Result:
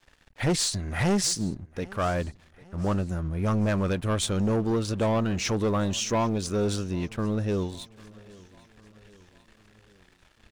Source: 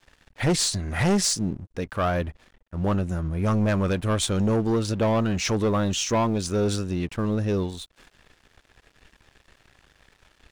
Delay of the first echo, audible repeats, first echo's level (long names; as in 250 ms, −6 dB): 798 ms, 3, −23.0 dB